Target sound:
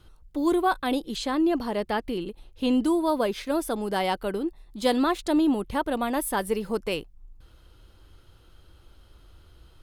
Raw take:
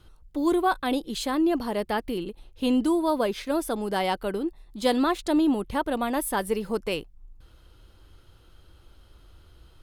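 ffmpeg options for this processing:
-filter_complex "[0:a]asettb=1/sr,asplit=3[a][b][c];[a]atrim=end=1.164[d];[b]atrim=start=1.16:end=2.71,asetpts=PTS-STARTPTS,afade=t=in:d=0.004:c=qsin,afade=t=out:st=1.546:d=0.004:c=qsin,acrossover=split=8100[e][f];[f]acompressor=threshold=-56dB:ratio=4:attack=1:release=60[g];[e][g]amix=inputs=2:normalize=0[h];[c]atrim=start=2.706[i];[d][h]acrossfade=d=0.004:c1=hsin:c2=qsin[j];[j][i]acrossfade=d=0.004:c1=qsin:c2=hsin"

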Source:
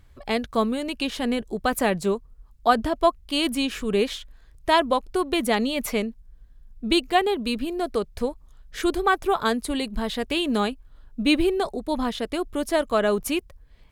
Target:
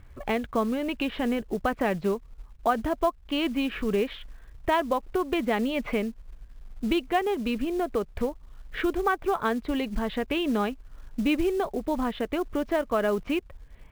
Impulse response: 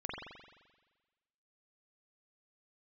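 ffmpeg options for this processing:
-af "lowpass=f=2.8k:w=0.5412,lowpass=f=2.8k:w=1.3066,acompressor=threshold=-32dB:ratio=2,acrusher=bits=6:mode=log:mix=0:aa=0.000001,volume=4dB"

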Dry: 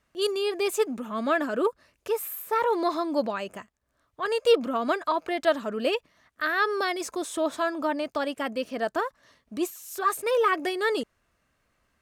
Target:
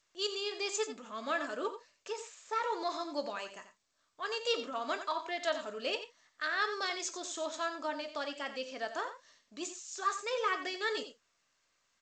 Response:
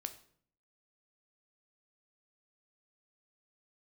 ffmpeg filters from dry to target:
-filter_complex "[0:a]aemphasis=mode=production:type=riaa,aecho=1:1:89:0.282[a];[1:a]atrim=start_sample=2205,afade=t=out:st=0.14:d=0.01,atrim=end_sample=6615,asetrate=66150,aresample=44100[b];[a][b]afir=irnorm=-1:irlink=0,volume=-3dB" -ar 16000 -c:a g722

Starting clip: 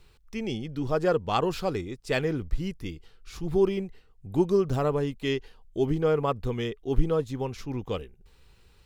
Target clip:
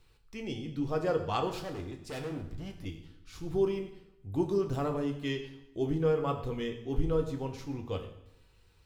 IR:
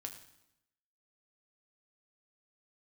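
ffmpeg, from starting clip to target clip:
-filter_complex "[0:a]asettb=1/sr,asplit=3[a][b][c];[a]atrim=end=1.494[d];[b]atrim=start=1.49:end=2.85,asetpts=PTS-STARTPTS,afade=t=in:d=0.004:c=qsin,afade=t=out:st=1.356:d=0.004:c=qsin,asoftclip=type=hard:threshold=-31dB[e];[c]atrim=start=2.846[f];[d][e]acrossfade=d=0.004:c1=hsin:c2=qsin[g];[g][f]acrossfade=d=0.004:c1=qsin:c2=hsin[h];[1:a]atrim=start_sample=2205[i];[h][i]afir=irnorm=-1:irlink=0,volume=-2dB"

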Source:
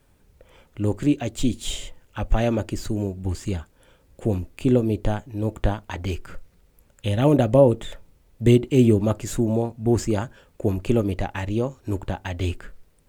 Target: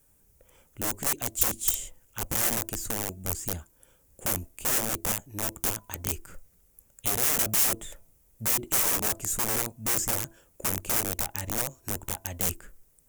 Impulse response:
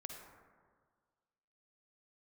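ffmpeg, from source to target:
-af "bandreject=f=333.5:t=h:w=4,bandreject=f=667:t=h:w=4,bandreject=f=1.0005k:t=h:w=4,aeval=exprs='(mod(8.91*val(0)+1,2)-1)/8.91':c=same,aexciter=amount=4.9:drive=5.7:freq=5.9k,volume=-8.5dB"

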